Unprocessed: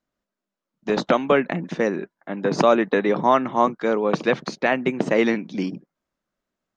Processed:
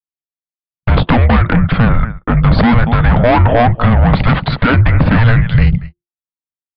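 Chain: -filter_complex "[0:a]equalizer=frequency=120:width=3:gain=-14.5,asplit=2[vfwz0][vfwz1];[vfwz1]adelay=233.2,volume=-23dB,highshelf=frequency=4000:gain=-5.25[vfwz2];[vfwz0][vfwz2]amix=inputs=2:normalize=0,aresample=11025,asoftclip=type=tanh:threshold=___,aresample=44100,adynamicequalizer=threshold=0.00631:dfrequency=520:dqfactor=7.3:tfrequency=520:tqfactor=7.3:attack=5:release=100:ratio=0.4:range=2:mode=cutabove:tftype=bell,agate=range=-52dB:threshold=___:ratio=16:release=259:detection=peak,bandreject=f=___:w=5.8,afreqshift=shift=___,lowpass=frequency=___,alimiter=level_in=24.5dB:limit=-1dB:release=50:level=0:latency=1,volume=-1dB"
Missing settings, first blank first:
-22dB, -44dB, 710, -350, 2500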